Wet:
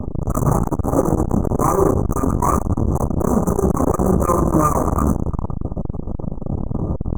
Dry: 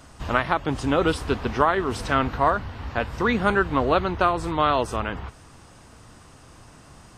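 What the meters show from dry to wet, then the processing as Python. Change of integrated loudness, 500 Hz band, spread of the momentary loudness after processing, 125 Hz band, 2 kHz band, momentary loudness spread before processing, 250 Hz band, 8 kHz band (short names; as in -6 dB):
+4.0 dB, +4.0 dB, 10 LU, +12.0 dB, -14.5 dB, 8 LU, +8.5 dB, +11.5 dB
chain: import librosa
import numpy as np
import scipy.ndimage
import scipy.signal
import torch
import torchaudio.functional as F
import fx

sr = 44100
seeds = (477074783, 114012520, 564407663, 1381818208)

p1 = fx.low_shelf(x, sr, hz=280.0, db=10.0)
p2 = p1 + fx.echo_banded(p1, sr, ms=112, feedback_pct=58, hz=890.0, wet_db=-13.0, dry=0)
p3 = fx.dynamic_eq(p2, sr, hz=660.0, q=3.1, threshold_db=-34.0, ratio=4.0, max_db=-5)
p4 = fx.rider(p3, sr, range_db=10, speed_s=0.5)
p5 = p3 + F.gain(torch.from_numpy(p4), -1.5).numpy()
p6 = fx.spec_gate(p5, sr, threshold_db=-15, keep='strong')
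p7 = fx.fuzz(p6, sr, gain_db=37.0, gate_db=-37.0)
p8 = fx.brickwall_bandstop(p7, sr, low_hz=1300.0, high_hz=5900.0)
p9 = fx.room_shoebox(p8, sr, seeds[0], volume_m3=130.0, walls='furnished', distance_m=1.2)
p10 = fx.transformer_sat(p9, sr, knee_hz=300.0)
y = F.gain(torch.from_numpy(p10), -1.0).numpy()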